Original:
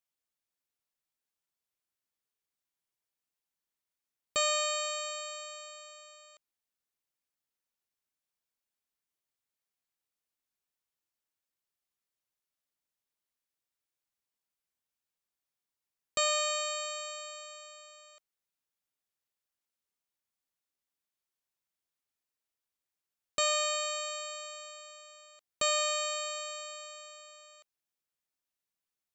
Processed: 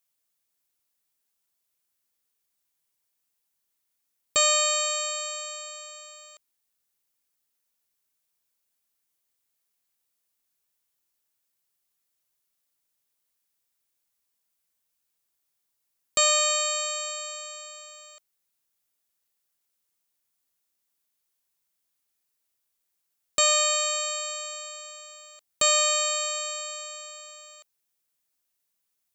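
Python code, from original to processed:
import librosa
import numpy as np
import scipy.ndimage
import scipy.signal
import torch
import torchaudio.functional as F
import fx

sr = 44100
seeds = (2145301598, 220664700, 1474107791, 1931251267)

y = fx.high_shelf(x, sr, hz=6100.0, db=9.0)
y = F.gain(torch.from_numpy(y), 5.0).numpy()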